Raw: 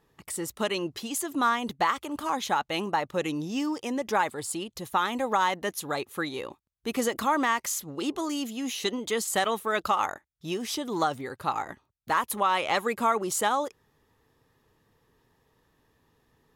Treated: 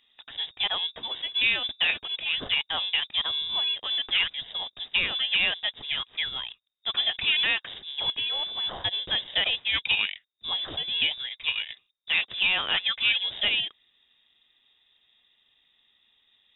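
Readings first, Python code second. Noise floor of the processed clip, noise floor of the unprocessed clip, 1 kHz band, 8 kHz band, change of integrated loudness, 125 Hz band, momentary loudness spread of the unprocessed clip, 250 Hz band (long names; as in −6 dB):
−70 dBFS, −73 dBFS, −14.0 dB, below −40 dB, +3.0 dB, −7.5 dB, 8 LU, −19.0 dB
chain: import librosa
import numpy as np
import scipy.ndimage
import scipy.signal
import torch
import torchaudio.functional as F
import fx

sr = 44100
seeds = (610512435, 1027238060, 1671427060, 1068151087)

p1 = fx.sample_hold(x, sr, seeds[0], rate_hz=1200.0, jitter_pct=0)
p2 = x + (p1 * 10.0 ** (-10.5 / 20.0))
y = fx.freq_invert(p2, sr, carrier_hz=3700)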